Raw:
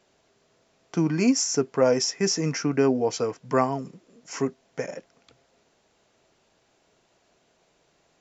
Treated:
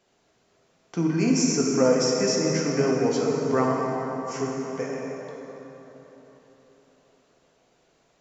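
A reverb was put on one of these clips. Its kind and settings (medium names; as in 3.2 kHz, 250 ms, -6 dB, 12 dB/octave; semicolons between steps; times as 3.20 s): plate-style reverb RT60 4.2 s, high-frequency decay 0.55×, DRR -2.5 dB; trim -3.5 dB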